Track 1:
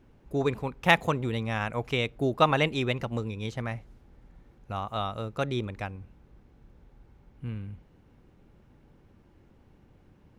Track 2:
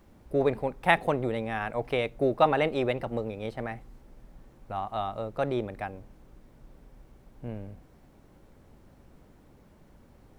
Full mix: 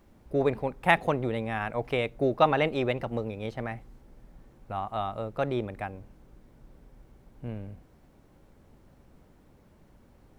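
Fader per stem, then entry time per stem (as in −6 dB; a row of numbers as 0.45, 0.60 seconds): −12.0, −2.0 decibels; 0.00, 0.00 seconds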